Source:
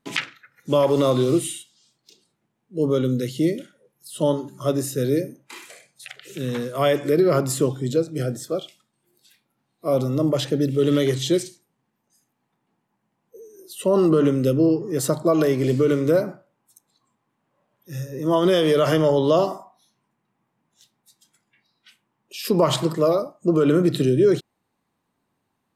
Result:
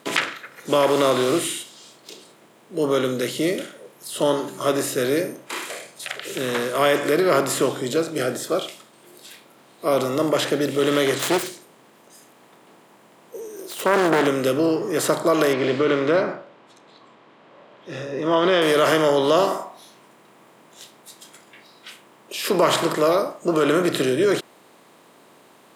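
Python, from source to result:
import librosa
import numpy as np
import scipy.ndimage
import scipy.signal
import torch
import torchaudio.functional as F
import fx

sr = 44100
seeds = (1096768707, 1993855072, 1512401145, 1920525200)

y = fx.self_delay(x, sr, depth_ms=0.47, at=(11.19, 14.27))
y = fx.lowpass(y, sr, hz=3900.0, slope=24, at=(15.53, 18.62))
y = fx.bin_compress(y, sr, power=0.6)
y = fx.highpass(y, sr, hz=400.0, slope=6)
y = fx.dynamic_eq(y, sr, hz=1600.0, q=1.3, threshold_db=-36.0, ratio=4.0, max_db=5)
y = F.gain(torch.from_numpy(y), -1.0).numpy()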